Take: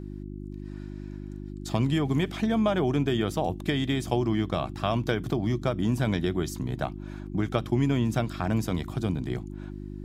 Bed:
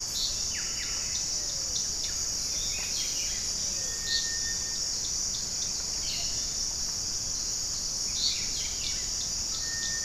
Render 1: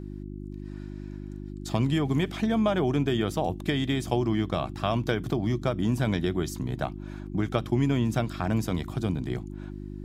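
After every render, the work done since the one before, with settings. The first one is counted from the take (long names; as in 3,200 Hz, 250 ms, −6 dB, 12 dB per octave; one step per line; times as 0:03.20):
no processing that can be heard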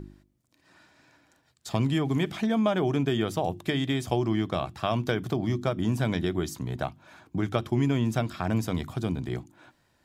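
hum removal 50 Hz, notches 7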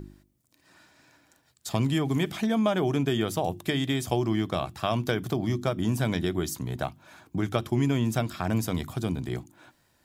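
high-shelf EQ 7,800 Hz +10.5 dB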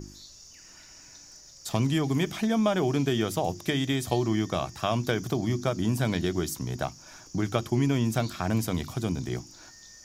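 mix in bed −19 dB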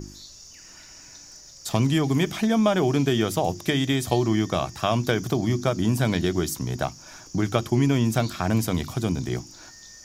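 level +4 dB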